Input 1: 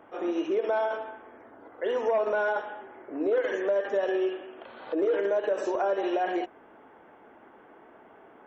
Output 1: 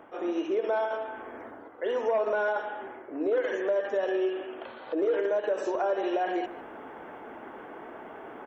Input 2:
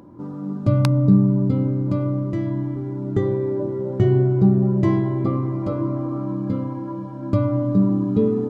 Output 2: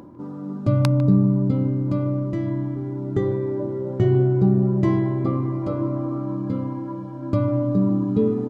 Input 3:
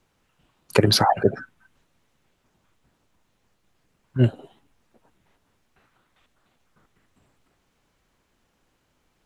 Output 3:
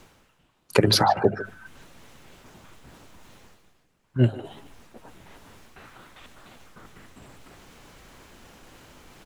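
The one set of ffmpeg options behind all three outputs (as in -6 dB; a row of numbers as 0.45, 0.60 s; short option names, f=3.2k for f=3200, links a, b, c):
-filter_complex "[0:a]bandreject=f=50:t=h:w=6,bandreject=f=100:t=h:w=6,bandreject=f=150:t=h:w=6,bandreject=f=200:t=h:w=6,areverse,acompressor=mode=upward:threshold=-31dB:ratio=2.5,areverse,asplit=2[a][b];[b]adelay=150,highpass=300,lowpass=3.4k,asoftclip=type=hard:threshold=-9.5dB,volume=-14dB[c];[a][c]amix=inputs=2:normalize=0,volume=-1dB"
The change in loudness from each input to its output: -1.5, -1.5, -1.5 LU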